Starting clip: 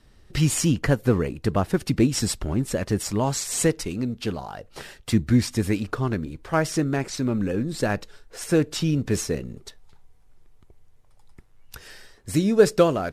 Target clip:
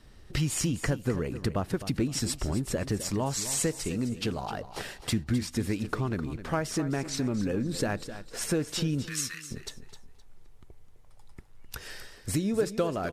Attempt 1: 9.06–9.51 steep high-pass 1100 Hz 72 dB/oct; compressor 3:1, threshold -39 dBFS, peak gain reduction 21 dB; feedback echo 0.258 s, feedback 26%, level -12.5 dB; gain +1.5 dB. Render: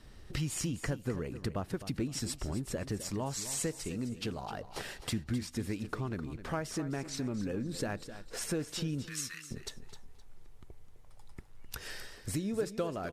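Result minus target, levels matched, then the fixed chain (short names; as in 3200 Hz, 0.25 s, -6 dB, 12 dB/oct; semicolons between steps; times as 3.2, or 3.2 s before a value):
compressor: peak gain reduction +6.5 dB
9.06–9.51 steep high-pass 1100 Hz 72 dB/oct; compressor 3:1, threshold -29.5 dBFS, peak gain reduction 15 dB; feedback echo 0.258 s, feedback 26%, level -12.5 dB; gain +1.5 dB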